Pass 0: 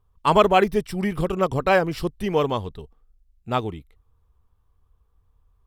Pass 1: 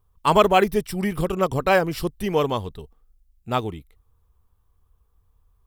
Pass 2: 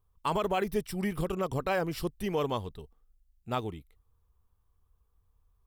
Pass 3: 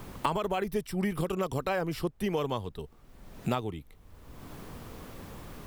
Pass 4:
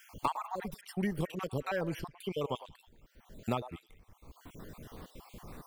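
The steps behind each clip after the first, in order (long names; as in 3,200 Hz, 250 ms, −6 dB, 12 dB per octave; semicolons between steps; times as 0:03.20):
high-shelf EQ 8,700 Hz +11 dB
brickwall limiter −12.5 dBFS, peak gain reduction 10 dB; level −7 dB
background noise brown −66 dBFS; multiband upward and downward compressor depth 100%
time-frequency cells dropped at random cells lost 50%; echo through a band-pass that steps 104 ms, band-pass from 740 Hz, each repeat 1.4 octaves, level −11 dB; level −2.5 dB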